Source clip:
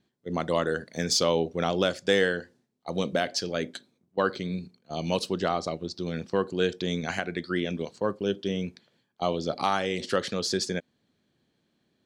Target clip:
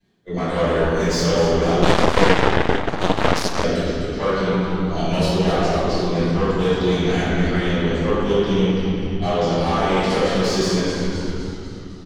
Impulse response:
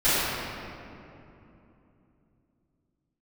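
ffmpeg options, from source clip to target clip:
-filter_complex "[0:a]acrossover=split=440|890[link_01][link_02][link_03];[link_03]alimiter=limit=-21.5dB:level=0:latency=1:release=410[link_04];[link_01][link_02][link_04]amix=inputs=3:normalize=0,asplit=8[link_05][link_06][link_07][link_08][link_09][link_10][link_11][link_12];[link_06]adelay=254,afreqshift=-94,volume=-9dB[link_13];[link_07]adelay=508,afreqshift=-188,volume=-13.7dB[link_14];[link_08]adelay=762,afreqshift=-282,volume=-18.5dB[link_15];[link_09]adelay=1016,afreqshift=-376,volume=-23.2dB[link_16];[link_10]adelay=1270,afreqshift=-470,volume=-27.9dB[link_17];[link_11]adelay=1524,afreqshift=-564,volume=-32.7dB[link_18];[link_12]adelay=1778,afreqshift=-658,volume=-37.4dB[link_19];[link_05][link_13][link_14][link_15][link_16][link_17][link_18][link_19]amix=inputs=8:normalize=0,asoftclip=type=tanh:threshold=-25dB[link_20];[1:a]atrim=start_sample=2205,asetrate=57330,aresample=44100[link_21];[link_20][link_21]afir=irnorm=-1:irlink=0,asettb=1/sr,asplit=3[link_22][link_23][link_24];[link_22]atrim=end=1.824[link_25];[link_23]atrim=start=1.82:end=3.64,asetpts=PTS-STARTPTS,afade=type=in:duration=0.004:curve=qsin,afade=type=out:start_time=1.816:duration=0.004:curve=qsin,aeval=exprs='1.06*(cos(1*acos(clip(val(0)/1.06,-1,1)))-cos(1*PI/2))+0.335*(cos(4*acos(clip(val(0)/1.06,-1,1)))-cos(4*PI/2))+0.188*(cos(7*acos(clip(val(0)/1.06,-1,1)))-cos(7*PI/2))+0.0668*(cos(8*acos(clip(val(0)/1.06,-1,1)))-cos(8*PI/2))':channel_layout=same[link_26];[link_24]atrim=start=3.636[link_27];[link_25][link_26]acrossfade=duration=0.004:curve1=hsin:curve2=qsin[link_28];[link_28][link_27]acrossfade=duration=0.004:curve1=qsin:curve2=hsin,volume=-5dB"

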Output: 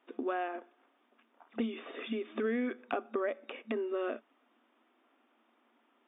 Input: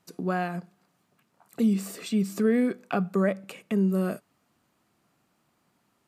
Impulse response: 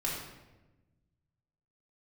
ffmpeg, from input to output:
-filter_complex "[0:a]afftfilt=real='re*between(b*sr/4096,220,3700)':imag='im*between(b*sr/4096,220,3700)':win_size=4096:overlap=0.75,acrossover=split=980|2200[link_01][link_02][link_03];[link_01]acompressor=threshold=-34dB:ratio=4[link_04];[link_02]acompressor=threshold=-46dB:ratio=4[link_05];[link_03]acompressor=threshold=-51dB:ratio=4[link_06];[link_04][link_05][link_06]amix=inputs=3:normalize=0,volume=1.5dB"

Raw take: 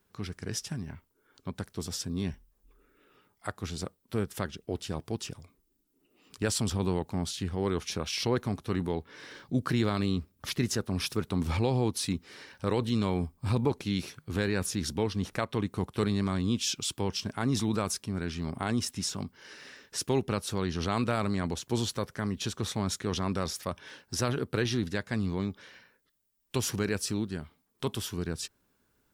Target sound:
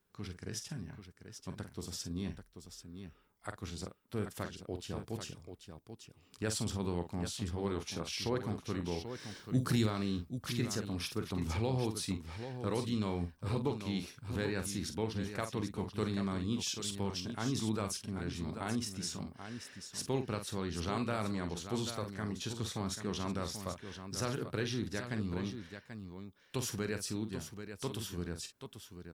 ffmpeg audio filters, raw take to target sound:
ffmpeg -i in.wav -filter_complex "[0:a]asettb=1/sr,asplit=3[link_01][link_02][link_03];[link_01]atrim=end=9.064[link_04];[link_02]atrim=start=9.06:end=9.86,asetpts=PTS-STARTPTS,afade=type=in:duration=0.004:curve=qsin,afade=type=out:start_time=0.796:duration=0.004:curve=qsin,bass=frequency=250:gain=6,treble=frequency=4000:gain=12[link_05];[link_03]atrim=start=9.856[link_06];[link_04][link_05]acrossfade=duration=0.004:curve1=hsin:curve2=qsin[link_07];[link_07][link_06]acrossfade=duration=0.004:curve1=qsin:curve2=hsin,asplit=2[link_08][link_09];[link_09]aecho=0:1:46|786:0.355|0.355[link_10];[link_08][link_10]amix=inputs=2:normalize=0,volume=-7dB" out.wav

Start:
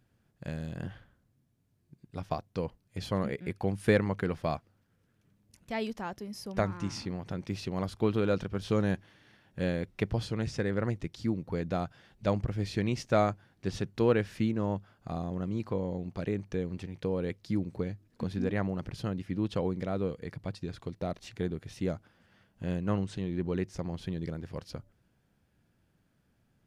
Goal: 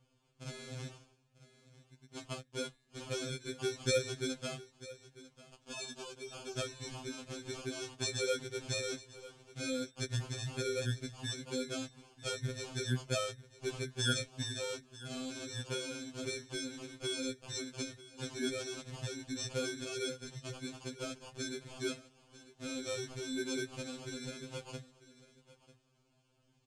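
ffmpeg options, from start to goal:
ffmpeg -i in.wav -filter_complex "[0:a]acrossover=split=340|750[link_01][link_02][link_03];[link_01]flanger=delay=6.6:depth=8.8:regen=-89:speed=0.9:shape=sinusoidal[link_04];[link_03]acompressor=threshold=-49dB:ratio=6[link_05];[link_04][link_02][link_05]amix=inputs=3:normalize=0,bass=frequency=250:gain=-2,treble=frequency=4000:gain=3,acrossover=split=490|3000[link_06][link_07][link_08];[link_07]acompressor=threshold=-54dB:ratio=6[link_09];[link_06][link_09][link_08]amix=inputs=3:normalize=0,aecho=1:1:945:0.126,acrusher=samples=23:mix=1:aa=0.000001,aexciter=amount=2:drive=6.9:freq=2600,lowpass=frequency=7700:width=0.5412,lowpass=frequency=7700:width=1.3066,afftfilt=real='re*2.45*eq(mod(b,6),0)':imag='im*2.45*eq(mod(b,6),0)':win_size=2048:overlap=0.75,volume=2.5dB" out.wav

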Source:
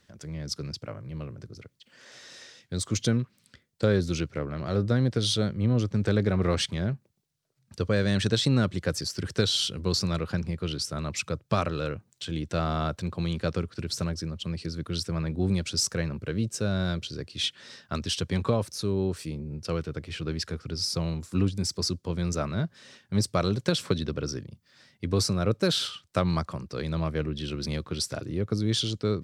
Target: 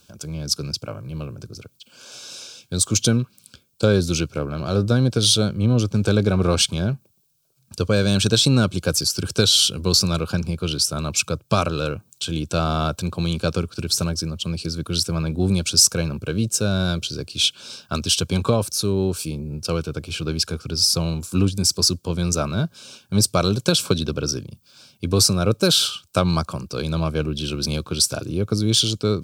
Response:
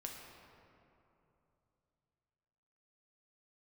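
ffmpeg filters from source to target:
-af "asuperstop=centerf=1900:order=8:qfactor=3.4,aemphasis=mode=production:type=50kf,volume=6dB"

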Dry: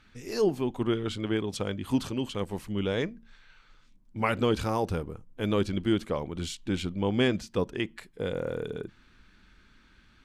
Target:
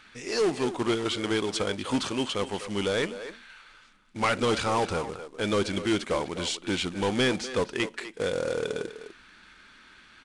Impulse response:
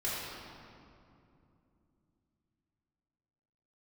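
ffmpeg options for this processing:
-filter_complex "[0:a]asplit=2[link_01][link_02];[link_02]highpass=frequency=720:poles=1,volume=19dB,asoftclip=type=tanh:threshold=-12.5dB[link_03];[link_01][link_03]amix=inputs=2:normalize=0,lowpass=frequency=6600:poles=1,volume=-6dB,asplit=2[link_04][link_05];[link_05]adelay=250,highpass=300,lowpass=3400,asoftclip=type=hard:threshold=-21.5dB,volume=-9dB[link_06];[link_04][link_06]amix=inputs=2:normalize=0,acrusher=bits=3:mode=log:mix=0:aa=0.000001,aresample=22050,aresample=44100,volume=-3.5dB"

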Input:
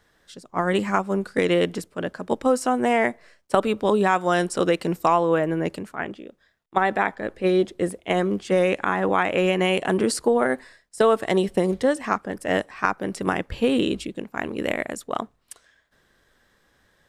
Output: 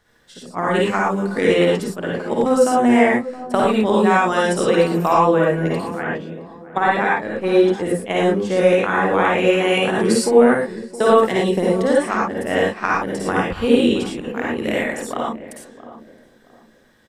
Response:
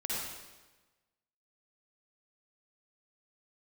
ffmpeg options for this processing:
-filter_complex "[0:a]asplit=2[link_01][link_02];[link_02]adelay=668,lowpass=frequency=880:poles=1,volume=-13.5dB,asplit=2[link_03][link_04];[link_04]adelay=668,lowpass=frequency=880:poles=1,volume=0.34,asplit=2[link_05][link_06];[link_06]adelay=668,lowpass=frequency=880:poles=1,volume=0.34[link_07];[link_01][link_03][link_05][link_07]amix=inputs=4:normalize=0[link_08];[1:a]atrim=start_sample=2205,afade=type=out:start_time=0.17:duration=0.01,atrim=end_sample=7938[link_09];[link_08][link_09]afir=irnorm=-1:irlink=0,volume=2dB"

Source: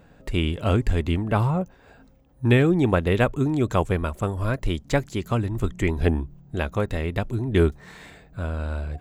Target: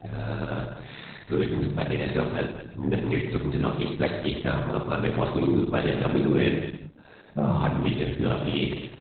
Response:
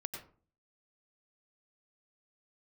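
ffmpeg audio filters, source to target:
-filter_complex "[0:a]areverse,equalizer=frequency=3800:width=1.5:gain=7,acompressor=threshold=-22dB:ratio=4,asoftclip=type=tanh:threshold=-17.5dB,aeval=exprs='val(0)*sin(2*PI*34*n/s)':channel_layout=same,highpass=120,lowpass=6900,asplit=2[link_01][link_02];[link_02]adelay=41,volume=-12dB[link_03];[link_01][link_03]amix=inputs=2:normalize=0,aecho=1:1:50|55|211:0.282|0.251|0.299,asplit=2[link_04][link_05];[1:a]atrim=start_sample=2205[link_06];[link_05][link_06]afir=irnorm=-1:irlink=0,volume=3.5dB[link_07];[link_04][link_07]amix=inputs=2:normalize=0" -ar 48000 -c:a libopus -b:a 8k

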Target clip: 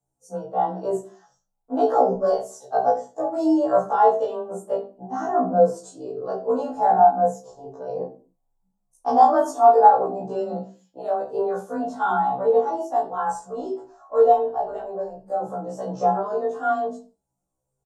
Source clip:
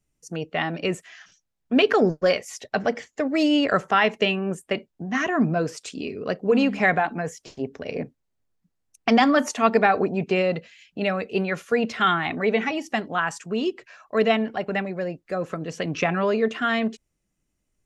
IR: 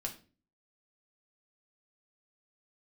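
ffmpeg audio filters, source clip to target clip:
-filter_complex "[0:a]flanger=delay=17:depth=2.1:speed=0.58[link_01];[1:a]atrim=start_sample=2205,afade=type=out:start_time=0.35:duration=0.01,atrim=end_sample=15876[link_02];[link_01][link_02]afir=irnorm=-1:irlink=0,asplit=3[link_03][link_04][link_05];[link_03]afade=type=out:start_time=13.12:duration=0.02[link_06];[link_04]asubboost=boost=9:cutoff=53,afade=type=in:start_time=13.12:duration=0.02,afade=type=out:start_time=15.24:duration=0.02[link_07];[link_05]afade=type=in:start_time=15.24:duration=0.02[link_08];[link_06][link_07][link_08]amix=inputs=3:normalize=0,afreqshift=18,firequalizer=gain_entry='entry(130,0);entry(240,-4);entry(430,8);entry(910,15);entry(2200,-30);entry(3500,-11);entry(7600,5)':delay=0.05:min_phase=1,afftfilt=real='re*1.73*eq(mod(b,3),0)':imag='im*1.73*eq(mod(b,3),0)':win_size=2048:overlap=0.75,volume=-1dB"

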